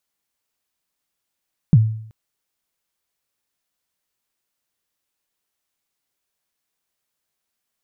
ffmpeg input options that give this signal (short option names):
-f lavfi -i "aevalsrc='0.562*pow(10,-3*t/0.63)*sin(2*PI*(180*0.042/log(110/180)*(exp(log(110/180)*min(t,0.042)/0.042)-1)+110*max(t-0.042,0)))':d=0.38:s=44100"